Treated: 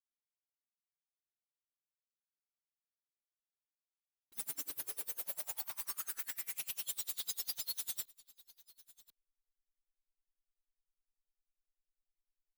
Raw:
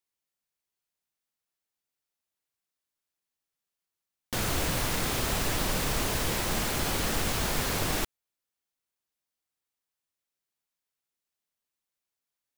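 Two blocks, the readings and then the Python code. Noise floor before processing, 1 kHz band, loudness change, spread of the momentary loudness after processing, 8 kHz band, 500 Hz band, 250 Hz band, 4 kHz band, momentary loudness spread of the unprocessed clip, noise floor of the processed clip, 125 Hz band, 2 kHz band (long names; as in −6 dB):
below −85 dBFS, −24.0 dB, −10.5 dB, 3 LU, −10.0 dB, −27.5 dB, −32.5 dB, −14.0 dB, 2 LU, below −85 dBFS, below −35 dB, −20.5 dB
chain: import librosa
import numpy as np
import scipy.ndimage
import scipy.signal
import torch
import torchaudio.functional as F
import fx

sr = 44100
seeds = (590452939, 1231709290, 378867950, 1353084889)

p1 = fx.lower_of_two(x, sr, delay_ms=6.9)
p2 = scipy.signal.sosfilt(scipy.signal.cheby2(4, 40, [260.0, 1400.0], 'bandstop', fs=sr, output='sos'), p1)
p3 = librosa.effects.preemphasis(p2, coef=0.8, zi=[0.0])
p4 = fx.hum_notches(p3, sr, base_hz=50, count=3)
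p5 = fx.spec_topn(p4, sr, count=32)
p6 = fx.tube_stage(p5, sr, drive_db=44.0, bias=0.3)
p7 = fx.filter_sweep_highpass(p6, sr, from_hz=96.0, to_hz=3700.0, start_s=3.64, end_s=6.99, q=4.7)
p8 = fx.backlash(p7, sr, play_db=-50.5)
p9 = p8 + fx.echo_single(p8, sr, ms=1046, db=-21.5, dry=0)
p10 = p9 * 10.0 ** (-29 * (0.5 - 0.5 * np.cos(2.0 * np.pi * 10.0 * np.arange(len(p9)) / sr)) / 20.0)
y = p10 * 10.0 ** (15.0 / 20.0)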